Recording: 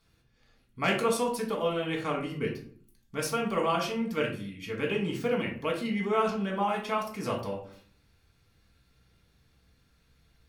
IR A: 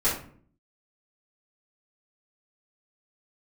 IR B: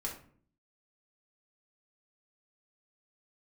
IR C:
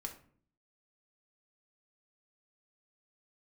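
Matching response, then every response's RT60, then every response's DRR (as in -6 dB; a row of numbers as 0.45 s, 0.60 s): B; 0.50 s, 0.50 s, 0.50 s; -11.5 dB, -2.0 dB, 3.0 dB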